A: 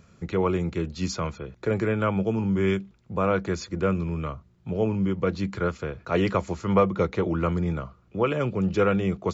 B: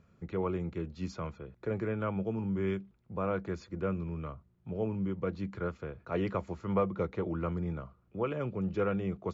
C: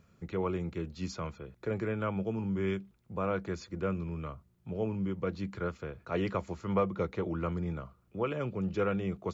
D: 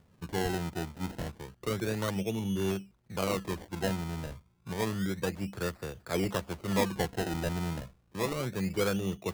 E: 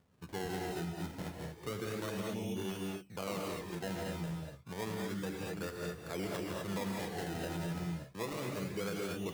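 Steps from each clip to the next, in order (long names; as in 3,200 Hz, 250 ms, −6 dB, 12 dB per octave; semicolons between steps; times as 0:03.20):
low-pass filter 1,900 Hz 6 dB per octave; level −8.5 dB
high-shelf EQ 3,100 Hz +8.5 dB
sample-and-hold swept by an LFO 27×, swing 100% 0.3 Hz; level +1 dB
low-shelf EQ 77 Hz −9.5 dB; reverb whose tail is shaped and stops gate 260 ms rising, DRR 0.5 dB; brickwall limiter −23.5 dBFS, peak gain reduction 8 dB; level −6 dB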